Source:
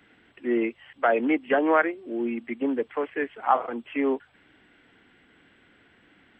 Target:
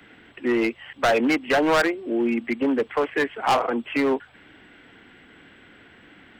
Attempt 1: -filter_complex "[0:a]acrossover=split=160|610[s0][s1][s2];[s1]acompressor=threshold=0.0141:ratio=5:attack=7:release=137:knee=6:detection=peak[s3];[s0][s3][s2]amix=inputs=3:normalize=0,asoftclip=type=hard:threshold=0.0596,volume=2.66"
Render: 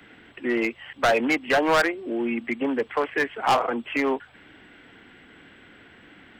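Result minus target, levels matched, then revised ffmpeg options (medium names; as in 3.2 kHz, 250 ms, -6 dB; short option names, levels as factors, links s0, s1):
compression: peak gain reduction +6 dB
-filter_complex "[0:a]acrossover=split=160|610[s0][s1][s2];[s1]acompressor=threshold=0.0335:ratio=5:attack=7:release=137:knee=6:detection=peak[s3];[s0][s3][s2]amix=inputs=3:normalize=0,asoftclip=type=hard:threshold=0.0596,volume=2.66"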